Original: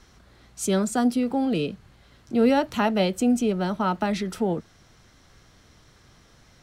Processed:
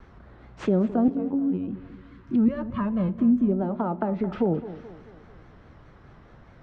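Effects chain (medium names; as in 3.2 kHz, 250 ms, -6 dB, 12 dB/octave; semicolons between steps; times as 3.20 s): CVSD coder 64 kbps; low-pass that closes with the level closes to 620 Hz, closed at -22 dBFS; 1.34–3.49 s: time-frequency box 360–890 Hz -16 dB; level-controlled noise filter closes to 1.4 kHz, open at -19 dBFS; 2.48–3.09 s: comb 1.8 ms, depth 92%; 3.62–4.21 s: bass shelf 170 Hz -10 dB; in parallel at -0.5 dB: compression, threshold -34 dBFS, peak gain reduction 15.5 dB; on the sum: vibrato 4.8 Hz 92 cents; 1.08–1.68 s: robot voice 92.1 Hz; tape echo 217 ms, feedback 53%, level -13.5 dB, low-pass 4.3 kHz; on a send at -18.5 dB: reverberation RT60 1.1 s, pre-delay 6 ms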